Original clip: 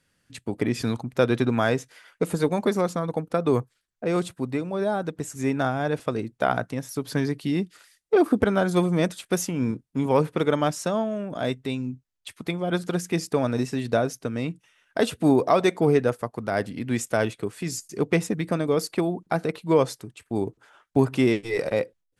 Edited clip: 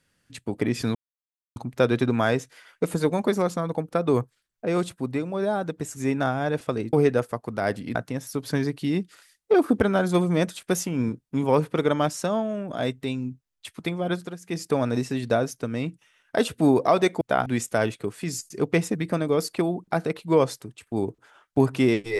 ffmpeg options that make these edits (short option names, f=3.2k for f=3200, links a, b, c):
-filter_complex "[0:a]asplit=7[a][b][c][d][e][f][g];[a]atrim=end=0.95,asetpts=PTS-STARTPTS,afade=t=out:st=0.946:d=0.004:c=hsin,apad=pad_dur=0.61[h];[b]atrim=start=0.95:end=6.322,asetpts=PTS-STARTPTS,afade=t=in:d=0.004:c=hsin[i];[c]atrim=start=15.828:end=16.852[j];[d]atrim=start=6.568:end=13,asetpts=PTS-STARTPTS,afade=t=out:st=6.112:d=0.32:silence=0.16788[k];[e]atrim=start=13:end=15.832,asetpts=PTS-STARTPTS,afade=t=in:d=0.32:silence=0.16788[l];[f]atrim=start=6.318:end=6.572[m];[g]atrim=start=16.848[n];[h][i]concat=n=2:v=0:a=1[o];[o][j]acrossfade=d=0.004:c1=hsin:c2=hsin[p];[k][l]concat=n=2:v=0:a=1[q];[p][q]acrossfade=d=0.004:c1=hsin:c2=hsin[r];[r][m]acrossfade=d=0.004:c1=hsin:c2=hsin[s];[s][n]acrossfade=d=0.004:c1=hsin:c2=hsin"